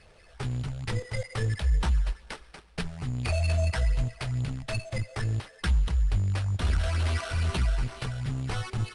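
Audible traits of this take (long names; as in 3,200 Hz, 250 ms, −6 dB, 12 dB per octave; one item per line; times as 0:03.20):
phaser sweep stages 8, 2.3 Hz, lowest notch 280–2,500 Hz
aliases and images of a low sample rate 7,000 Hz, jitter 0%
IMA ADPCM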